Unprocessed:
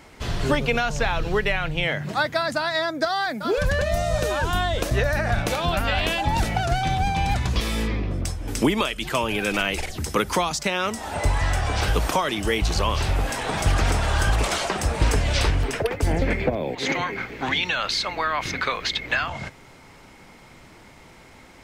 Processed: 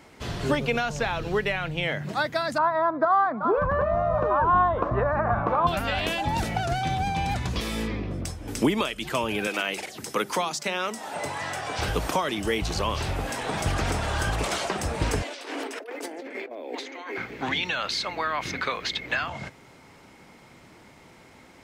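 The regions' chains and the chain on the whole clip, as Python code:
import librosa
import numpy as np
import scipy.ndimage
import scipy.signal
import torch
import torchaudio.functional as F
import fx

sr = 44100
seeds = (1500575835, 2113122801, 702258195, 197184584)

y = fx.chain(x, sr, fx.lowpass_res(hz=1100.0, q=5.9),
    fx.echo_single(ms=275, db=-22.0), at=(2.58, 5.67))
y = fx.chain(y, sr, fx.highpass(hz=110.0, slope=24),
    fx.low_shelf(hz=210.0, db=-8.5),
    fx.hum_notches(base_hz=50, count=8), at=(9.47, 11.79))
y = fx.chain(y, sr, fx.ellip_highpass(hz=270.0, order=4, stop_db=50),
    fx.over_compress(threshold_db=-34.0, ratio=-1.0), at=(15.22, 17.18))
y = fx.highpass(y, sr, hz=150.0, slope=6)
y = fx.low_shelf(y, sr, hz=470.0, db=4.5)
y = y * 10.0 ** (-4.0 / 20.0)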